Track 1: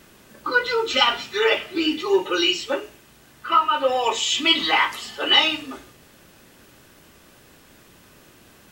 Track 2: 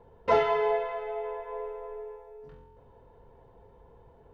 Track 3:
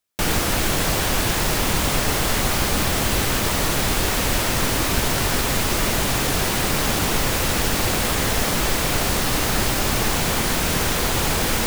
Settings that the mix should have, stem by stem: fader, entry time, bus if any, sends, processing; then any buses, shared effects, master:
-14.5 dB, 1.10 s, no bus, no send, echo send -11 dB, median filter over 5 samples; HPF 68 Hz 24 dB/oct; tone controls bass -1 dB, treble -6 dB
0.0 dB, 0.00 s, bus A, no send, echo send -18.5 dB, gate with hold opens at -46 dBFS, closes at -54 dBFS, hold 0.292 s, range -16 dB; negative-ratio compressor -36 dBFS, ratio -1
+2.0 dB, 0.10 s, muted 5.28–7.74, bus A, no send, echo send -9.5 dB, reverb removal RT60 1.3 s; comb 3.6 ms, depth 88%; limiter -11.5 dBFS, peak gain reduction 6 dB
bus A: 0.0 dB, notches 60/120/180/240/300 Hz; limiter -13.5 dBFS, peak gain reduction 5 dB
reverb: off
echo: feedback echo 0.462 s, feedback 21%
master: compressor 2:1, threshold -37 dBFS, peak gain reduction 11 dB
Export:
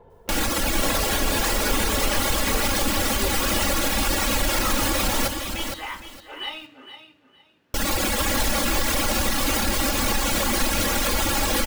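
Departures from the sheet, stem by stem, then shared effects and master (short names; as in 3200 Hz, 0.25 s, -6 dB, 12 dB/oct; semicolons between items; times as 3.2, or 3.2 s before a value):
stem 2: missing gate with hold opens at -46 dBFS, closes at -54 dBFS, hold 0.292 s, range -16 dB; master: missing compressor 2:1, threshold -37 dBFS, peak gain reduction 11 dB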